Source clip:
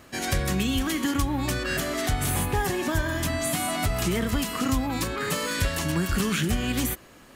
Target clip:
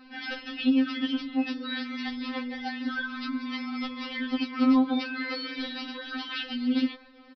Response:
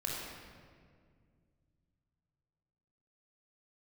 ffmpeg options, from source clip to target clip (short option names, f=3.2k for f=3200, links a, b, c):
-af "aresample=11025,aresample=44100,afftfilt=real='re*3.46*eq(mod(b,12),0)':imag='im*3.46*eq(mod(b,12),0)':win_size=2048:overlap=0.75"